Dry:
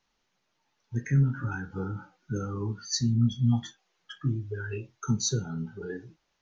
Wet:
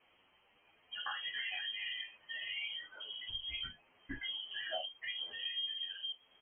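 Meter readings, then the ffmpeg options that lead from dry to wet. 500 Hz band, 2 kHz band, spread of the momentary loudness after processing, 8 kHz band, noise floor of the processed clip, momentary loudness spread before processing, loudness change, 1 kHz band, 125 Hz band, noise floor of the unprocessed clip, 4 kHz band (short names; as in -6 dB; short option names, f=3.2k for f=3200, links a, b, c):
-14.0 dB, +1.0 dB, 6 LU, n/a, -71 dBFS, 14 LU, -10.0 dB, -6.5 dB, -38.0 dB, -77 dBFS, +4.0 dB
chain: -filter_complex "[0:a]afftfilt=real='re*lt(hypot(re,im),0.0562)':imag='im*lt(hypot(re,im),0.0562)':win_size=1024:overlap=0.75,highpass=60,equalizer=f=1.8k:t=o:w=0.51:g=-6,acrossover=split=650[a][b];[a]acontrast=81[c];[c][b]amix=inputs=2:normalize=0,asubboost=boost=11.5:cutoff=100,acompressor=threshold=-43dB:ratio=4,crystalizer=i=9.5:c=0,lowpass=f=2.8k:t=q:w=0.5098,lowpass=f=2.8k:t=q:w=0.6013,lowpass=f=2.8k:t=q:w=0.9,lowpass=f=2.8k:t=q:w=2.563,afreqshift=-3300,asplit=2[d][e];[e]adelay=9.4,afreqshift=1.3[f];[d][f]amix=inputs=2:normalize=1,volume=5.5dB"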